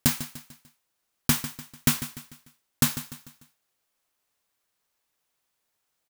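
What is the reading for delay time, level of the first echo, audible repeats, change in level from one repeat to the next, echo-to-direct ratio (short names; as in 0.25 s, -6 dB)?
0.148 s, -13.0 dB, 4, -7.5 dB, -12.0 dB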